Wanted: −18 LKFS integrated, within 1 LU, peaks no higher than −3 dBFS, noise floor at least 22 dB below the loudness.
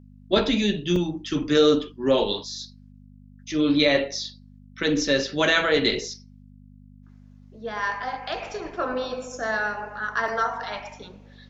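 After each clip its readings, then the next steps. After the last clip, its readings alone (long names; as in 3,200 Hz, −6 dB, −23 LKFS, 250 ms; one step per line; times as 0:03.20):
number of dropouts 2; longest dropout 2.1 ms; mains hum 50 Hz; hum harmonics up to 250 Hz; level of the hum −47 dBFS; integrated loudness −24.0 LKFS; sample peak −6.5 dBFS; target loudness −18.0 LKFS
→ repair the gap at 0:00.96/0:10.28, 2.1 ms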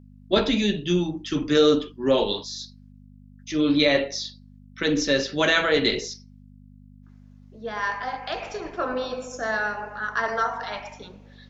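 number of dropouts 0; mains hum 50 Hz; hum harmonics up to 250 Hz; level of the hum −47 dBFS
→ hum removal 50 Hz, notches 5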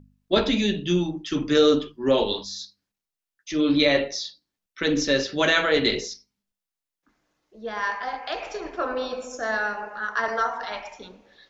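mains hum none found; integrated loudness −24.0 LKFS; sample peak −6.5 dBFS; target loudness −18.0 LKFS
→ level +6 dB
brickwall limiter −3 dBFS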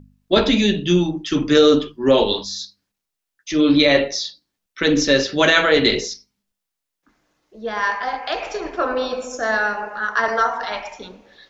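integrated loudness −18.5 LKFS; sample peak −3.0 dBFS; background noise floor −82 dBFS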